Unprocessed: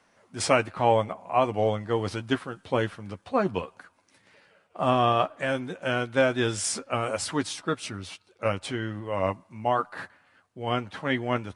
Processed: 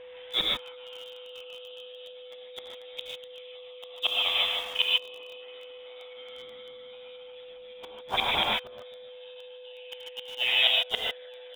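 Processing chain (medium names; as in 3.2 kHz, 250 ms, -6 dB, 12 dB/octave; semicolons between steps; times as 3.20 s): peaking EQ 2.9 kHz +10 dB 0.27 oct; on a send: bouncing-ball echo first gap 270 ms, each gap 0.85×, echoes 5; on the sum: inverted gate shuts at -21 dBFS, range -37 dB; gated-style reverb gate 170 ms rising, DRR -2.5 dB; frequency inversion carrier 3.7 kHz; whistle 500 Hz -50 dBFS; in parallel at -12 dB: bit crusher 7-bit; on the sum: trim +6.5 dB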